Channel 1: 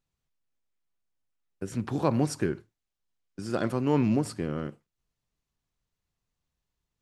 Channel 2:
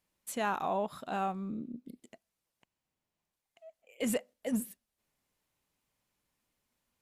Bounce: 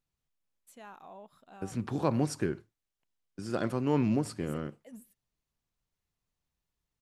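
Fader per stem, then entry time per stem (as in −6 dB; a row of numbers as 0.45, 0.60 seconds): −3.0, −17.0 decibels; 0.00, 0.40 seconds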